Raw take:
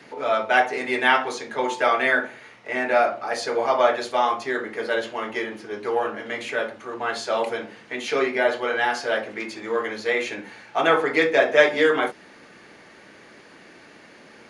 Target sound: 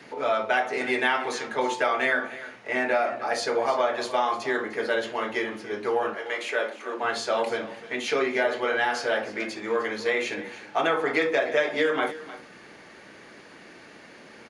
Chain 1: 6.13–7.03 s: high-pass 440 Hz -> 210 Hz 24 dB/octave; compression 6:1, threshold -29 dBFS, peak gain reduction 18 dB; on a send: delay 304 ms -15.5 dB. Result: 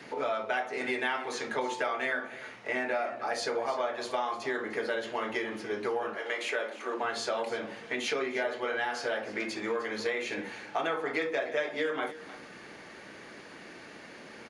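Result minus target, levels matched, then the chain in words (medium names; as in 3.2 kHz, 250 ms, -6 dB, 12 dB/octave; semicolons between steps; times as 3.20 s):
compression: peak gain reduction +7.5 dB
6.13–7.03 s: high-pass 440 Hz -> 210 Hz 24 dB/octave; compression 6:1, threshold -20 dBFS, peak gain reduction 10.5 dB; on a send: delay 304 ms -15.5 dB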